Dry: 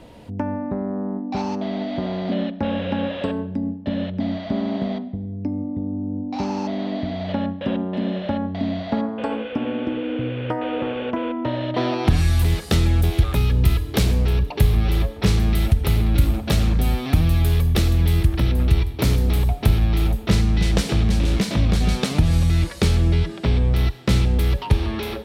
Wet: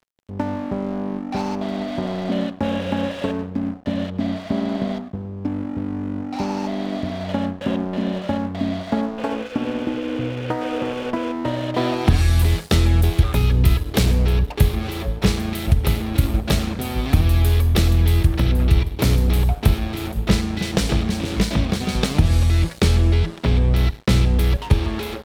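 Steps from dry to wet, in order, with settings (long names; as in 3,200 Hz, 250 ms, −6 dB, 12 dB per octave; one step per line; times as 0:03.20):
hum removal 54.67 Hz, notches 3
dead-zone distortion −36.5 dBFS
level +2.5 dB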